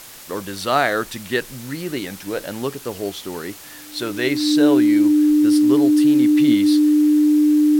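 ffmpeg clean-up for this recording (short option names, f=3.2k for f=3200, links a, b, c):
-af "bandreject=f=300:w=30,afwtdn=0.011"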